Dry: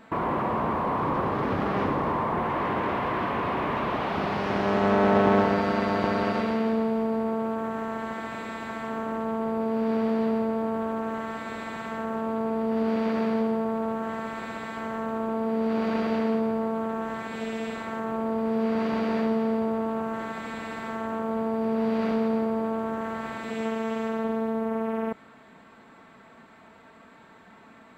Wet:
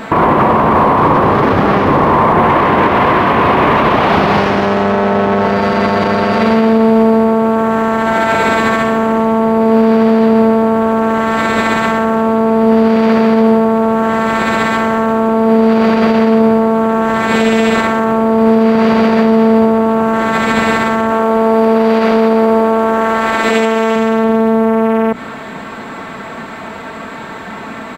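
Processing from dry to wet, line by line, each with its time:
7.69–8.21 echo throw 0.37 s, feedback 60%, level -6 dB
21.1–23.96 bell 130 Hz -12.5 dB 1.3 oct
whole clip: notches 60/120/180/240/300 Hz; compressor, threshold -28 dBFS; maximiser +26.5 dB; gain -1 dB

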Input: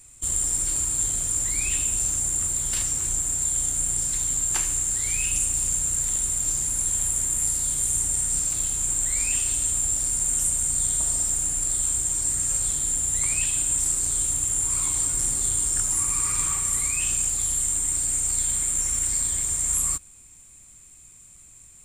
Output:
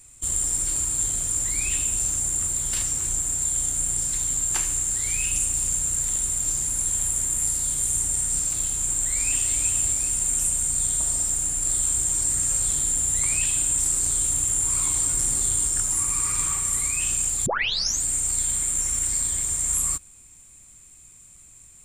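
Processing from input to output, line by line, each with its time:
8.87–9.54 echo throw 0.38 s, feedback 50%, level -6 dB
11.65–15.67 fast leveller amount 50%
17.46 tape start 0.57 s

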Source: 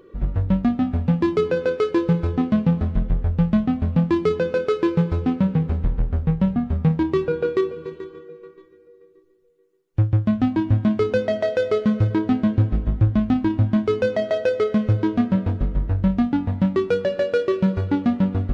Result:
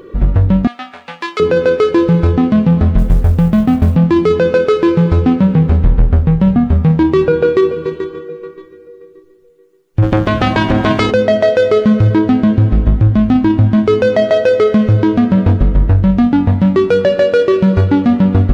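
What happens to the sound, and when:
0.67–1.4 HPF 1300 Hz
2.98–3.96 G.711 law mismatch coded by A
10.02–11.1 spectral limiter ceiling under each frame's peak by 24 dB
whole clip: maximiser +14.5 dB; gain -1 dB

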